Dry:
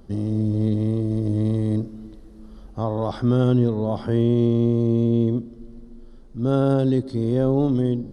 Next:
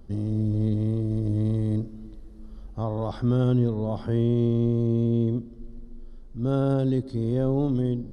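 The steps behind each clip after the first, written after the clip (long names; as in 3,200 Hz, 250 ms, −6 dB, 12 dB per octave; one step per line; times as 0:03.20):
low-shelf EQ 89 Hz +9 dB
level −5.5 dB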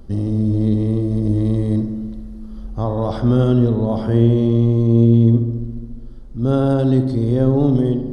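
feedback echo with a low-pass in the loop 69 ms, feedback 74%, low-pass 2,800 Hz, level −9.5 dB
level +7.5 dB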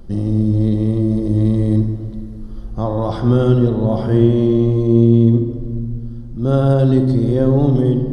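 rectangular room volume 3,100 cubic metres, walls mixed, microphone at 0.88 metres
level +1 dB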